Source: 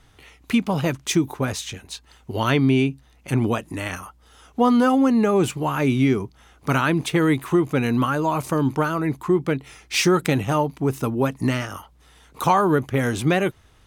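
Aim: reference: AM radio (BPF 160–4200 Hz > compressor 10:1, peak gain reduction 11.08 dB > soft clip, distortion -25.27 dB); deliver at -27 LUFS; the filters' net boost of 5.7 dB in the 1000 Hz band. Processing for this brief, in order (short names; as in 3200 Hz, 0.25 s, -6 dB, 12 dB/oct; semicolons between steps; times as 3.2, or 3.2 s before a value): BPF 160–4200 Hz; bell 1000 Hz +7 dB; compressor 10:1, threshold -18 dBFS; soft clip -10 dBFS; gain -1.5 dB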